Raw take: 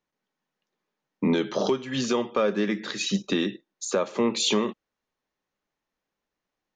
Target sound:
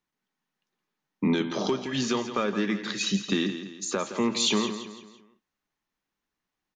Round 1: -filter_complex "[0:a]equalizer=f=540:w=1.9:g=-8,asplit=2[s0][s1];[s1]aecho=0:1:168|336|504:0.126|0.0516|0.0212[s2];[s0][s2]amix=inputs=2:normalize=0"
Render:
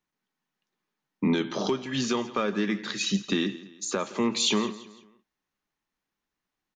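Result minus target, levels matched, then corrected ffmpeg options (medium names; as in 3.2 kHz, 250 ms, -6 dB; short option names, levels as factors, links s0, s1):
echo-to-direct -7 dB
-filter_complex "[0:a]equalizer=f=540:w=1.9:g=-8,asplit=2[s0][s1];[s1]aecho=0:1:168|336|504|672:0.282|0.116|0.0474|0.0194[s2];[s0][s2]amix=inputs=2:normalize=0"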